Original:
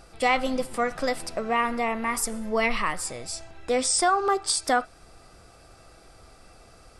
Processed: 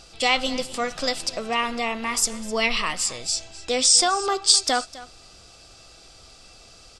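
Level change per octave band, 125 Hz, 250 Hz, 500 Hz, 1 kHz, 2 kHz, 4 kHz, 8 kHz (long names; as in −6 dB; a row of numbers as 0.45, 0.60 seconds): −1.0, −1.0, −1.0, −1.0, +1.5, +11.0, +7.5 decibels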